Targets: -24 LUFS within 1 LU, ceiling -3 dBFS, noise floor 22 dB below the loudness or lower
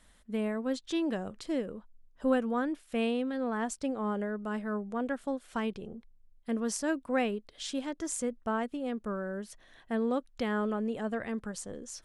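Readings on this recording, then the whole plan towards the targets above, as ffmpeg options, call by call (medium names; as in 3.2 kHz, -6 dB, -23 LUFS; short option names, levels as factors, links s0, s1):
loudness -33.5 LUFS; peak level -16.5 dBFS; loudness target -24.0 LUFS
-> -af "volume=2.99"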